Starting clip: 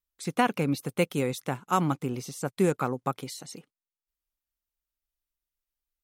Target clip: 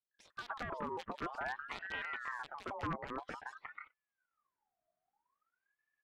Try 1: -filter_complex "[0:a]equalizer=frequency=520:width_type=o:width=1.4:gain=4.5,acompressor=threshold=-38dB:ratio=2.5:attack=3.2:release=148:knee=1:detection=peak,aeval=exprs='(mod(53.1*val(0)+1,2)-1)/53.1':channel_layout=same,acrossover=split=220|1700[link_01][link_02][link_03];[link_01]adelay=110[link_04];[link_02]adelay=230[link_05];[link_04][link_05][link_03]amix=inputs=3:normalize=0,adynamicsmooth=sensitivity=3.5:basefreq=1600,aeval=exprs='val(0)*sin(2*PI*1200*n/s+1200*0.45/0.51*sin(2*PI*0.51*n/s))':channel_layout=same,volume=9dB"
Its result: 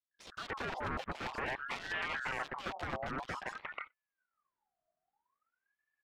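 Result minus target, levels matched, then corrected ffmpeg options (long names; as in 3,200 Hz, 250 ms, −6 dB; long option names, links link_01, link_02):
downward compressor: peak gain reduction −7 dB
-filter_complex "[0:a]equalizer=frequency=520:width_type=o:width=1.4:gain=4.5,acompressor=threshold=-50dB:ratio=2.5:attack=3.2:release=148:knee=1:detection=peak,aeval=exprs='(mod(53.1*val(0)+1,2)-1)/53.1':channel_layout=same,acrossover=split=220|1700[link_01][link_02][link_03];[link_01]adelay=110[link_04];[link_02]adelay=230[link_05];[link_04][link_05][link_03]amix=inputs=3:normalize=0,adynamicsmooth=sensitivity=3.5:basefreq=1600,aeval=exprs='val(0)*sin(2*PI*1200*n/s+1200*0.45/0.51*sin(2*PI*0.51*n/s))':channel_layout=same,volume=9dB"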